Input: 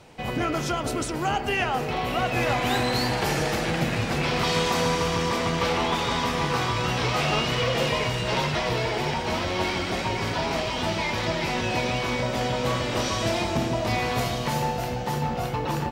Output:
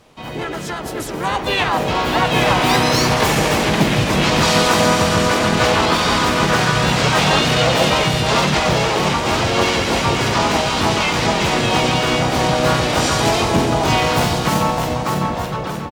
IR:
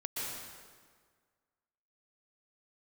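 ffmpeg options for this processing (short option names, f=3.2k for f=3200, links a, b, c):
-filter_complex "[0:a]dynaudnorm=f=940:g=3:m=11.5dB,asplit=4[a][b][c][d];[b]asetrate=29433,aresample=44100,atempo=1.49831,volume=-15dB[e];[c]asetrate=55563,aresample=44100,atempo=0.793701,volume=-1dB[f];[d]asetrate=66075,aresample=44100,atempo=0.66742,volume=-6dB[g];[a][e][f][g]amix=inputs=4:normalize=0,volume=-3.5dB"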